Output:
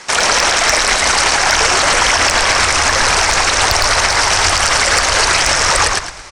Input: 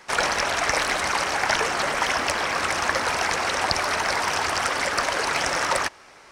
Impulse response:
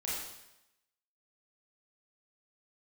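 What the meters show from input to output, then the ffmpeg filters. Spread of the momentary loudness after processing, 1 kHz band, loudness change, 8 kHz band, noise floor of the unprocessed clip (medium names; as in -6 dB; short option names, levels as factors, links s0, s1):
1 LU, +9.5 dB, +12.0 dB, +16.5 dB, -49 dBFS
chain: -filter_complex "[0:a]lowpass=f=8600:w=0.5412,lowpass=f=8600:w=1.3066,crystalizer=i=2.5:c=0,asplit=2[s0][s1];[s1]asplit=4[s2][s3][s4][s5];[s2]adelay=110,afreqshift=-71,volume=0.562[s6];[s3]adelay=220,afreqshift=-142,volume=0.174[s7];[s4]adelay=330,afreqshift=-213,volume=0.0543[s8];[s5]adelay=440,afreqshift=-284,volume=0.0168[s9];[s6][s7][s8][s9]amix=inputs=4:normalize=0[s10];[s0][s10]amix=inputs=2:normalize=0,asoftclip=type=hard:threshold=0.501,asubboost=boost=6.5:cutoff=87,alimiter=level_in=3.76:limit=0.891:release=50:level=0:latency=1,volume=0.891"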